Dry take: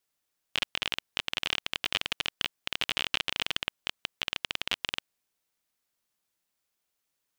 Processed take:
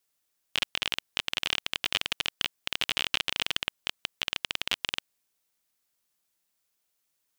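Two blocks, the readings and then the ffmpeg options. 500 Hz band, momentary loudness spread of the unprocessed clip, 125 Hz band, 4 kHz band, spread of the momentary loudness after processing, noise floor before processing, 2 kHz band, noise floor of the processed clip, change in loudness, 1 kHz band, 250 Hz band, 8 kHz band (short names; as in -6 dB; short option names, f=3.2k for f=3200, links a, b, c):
0.0 dB, 6 LU, 0.0 dB, +1.5 dB, 6 LU, -82 dBFS, +1.0 dB, -78 dBFS, +1.5 dB, +0.5 dB, 0.0 dB, +3.5 dB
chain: -af "highshelf=f=4.6k:g=5"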